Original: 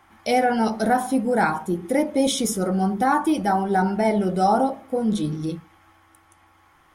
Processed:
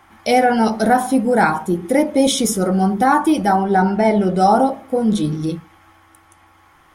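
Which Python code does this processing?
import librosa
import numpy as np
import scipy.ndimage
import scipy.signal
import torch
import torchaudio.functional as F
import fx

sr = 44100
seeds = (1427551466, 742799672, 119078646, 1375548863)

y = fx.high_shelf(x, sr, hz=fx.line((3.55, 7200.0), (4.39, 11000.0)), db=-11.0, at=(3.55, 4.39), fade=0.02)
y = y * 10.0 ** (5.5 / 20.0)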